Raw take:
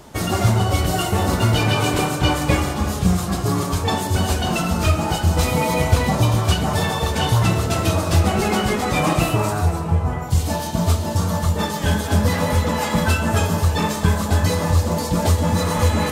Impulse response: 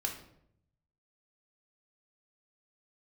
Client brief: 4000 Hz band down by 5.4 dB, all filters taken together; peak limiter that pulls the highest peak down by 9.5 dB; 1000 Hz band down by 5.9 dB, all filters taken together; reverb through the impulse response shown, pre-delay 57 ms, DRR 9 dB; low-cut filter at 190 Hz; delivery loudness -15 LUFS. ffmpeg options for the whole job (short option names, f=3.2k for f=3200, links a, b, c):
-filter_complex "[0:a]highpass=190,equalizer=f=1k:t=o:g=-7.5,equalizer=f=4k:t=o:g=-7,alimiter=limit=-17.5dB:level=0:latency=1,asplit=2[a][b];[1:a]atrim=start_sample=2205,adelay=57[c];[b][c]afir=irnorm=-1:irlink=0,volume=-11.5dB[d];[a][d]amix=inputs=2:normalize=0,volume=11.5dB"